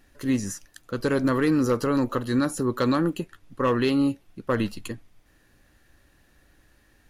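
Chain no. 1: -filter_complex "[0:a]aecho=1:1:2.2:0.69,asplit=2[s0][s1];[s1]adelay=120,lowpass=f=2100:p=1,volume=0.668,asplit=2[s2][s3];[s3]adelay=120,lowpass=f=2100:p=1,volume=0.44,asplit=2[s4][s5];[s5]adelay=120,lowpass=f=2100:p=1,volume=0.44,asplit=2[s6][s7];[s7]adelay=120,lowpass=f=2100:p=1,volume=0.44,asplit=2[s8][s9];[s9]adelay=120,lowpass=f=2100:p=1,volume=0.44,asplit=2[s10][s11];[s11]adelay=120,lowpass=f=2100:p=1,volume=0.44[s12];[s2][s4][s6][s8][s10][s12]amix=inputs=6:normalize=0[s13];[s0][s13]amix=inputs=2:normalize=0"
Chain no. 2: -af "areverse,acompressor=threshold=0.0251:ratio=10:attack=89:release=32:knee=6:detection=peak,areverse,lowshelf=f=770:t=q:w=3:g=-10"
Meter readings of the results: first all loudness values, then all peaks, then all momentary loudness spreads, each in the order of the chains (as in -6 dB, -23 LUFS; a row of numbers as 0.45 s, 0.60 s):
-23.5 LUFS, -33.5 LUFS; -8.0 dBFS, -16.5 dBFS; 12 LU, 12 LU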